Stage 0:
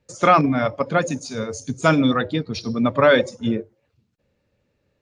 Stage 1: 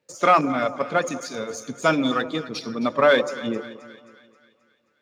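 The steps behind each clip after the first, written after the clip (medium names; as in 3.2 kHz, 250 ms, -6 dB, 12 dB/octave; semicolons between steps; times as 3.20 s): partial rectifier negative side -3 dB; Bessel high-pass 290 Hz, order 2; two-band feedback delay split 1.3 kHz, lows 192 ms, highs 265 ms, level -15 dB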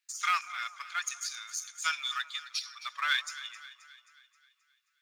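inverse Chebyshev high-pass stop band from 520 Hz, stop band 50 dB; treble shelf 3.4 kHz +11 dB; trim -7.5 dB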